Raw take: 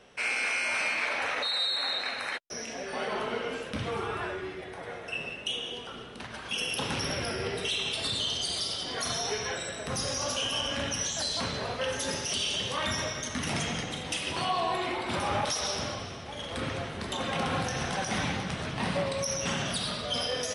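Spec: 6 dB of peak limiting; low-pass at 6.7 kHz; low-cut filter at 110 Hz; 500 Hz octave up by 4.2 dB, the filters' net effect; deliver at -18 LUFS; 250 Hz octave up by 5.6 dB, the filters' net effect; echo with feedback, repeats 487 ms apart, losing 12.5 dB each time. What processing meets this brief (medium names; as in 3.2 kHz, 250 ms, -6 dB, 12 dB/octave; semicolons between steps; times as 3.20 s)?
high-pass 110 Hz; low-pass 6.7 kHz; peaking EQ 250 Hz +6.5 dB; peaking EQ 500 Hz +3.5 dB; peak limiter -21.5 dBFS; feedback delay 487 ms, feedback 24%, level -12.5 dB; trim +12.5 dB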